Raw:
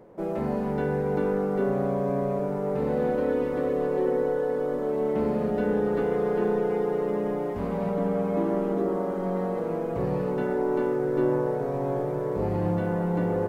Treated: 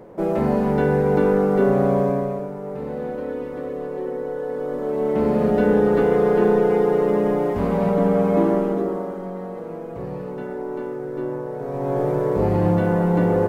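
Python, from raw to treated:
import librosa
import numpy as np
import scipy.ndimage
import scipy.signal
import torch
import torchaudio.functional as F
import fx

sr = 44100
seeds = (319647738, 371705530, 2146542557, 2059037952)

y = fx.gain(x, sr, db=fx.line((2.0, 8.0), (2.53, -3.0), (4.2, -3.0), (5.48, 8.0), (8.44, 8.0), (9.34, -3.5), (11.49, -3.5), (12.06, 7.5)))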